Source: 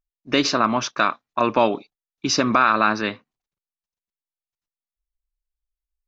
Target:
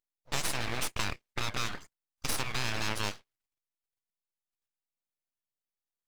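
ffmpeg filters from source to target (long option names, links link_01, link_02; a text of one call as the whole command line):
ffmpeg -i in.wav -filter_complex "[0:a]afftfilt=real='re*lt(hypot(re,im),0.282)':imag='im*lt(hypot(re,im),0.282)':win_size=1024:overlap=0.75,highpass=710,asplit=2[link_01][link_02];[link_02]alimiter=limit=-20.5dB:level=0:latency=1:release=26,volume=-0.5dB[link_03];[link_01][link_03]amix=inputs=2:normalize=0,acompressor=threshold=-22dB:ratio=6,aeval=exprs='(tanh(7.08*val(0)+0.75)-tanh(0.75))/7.08':channel_layout=same,aeval=exprs='abs(val(0))':channel_layout=same" out.wav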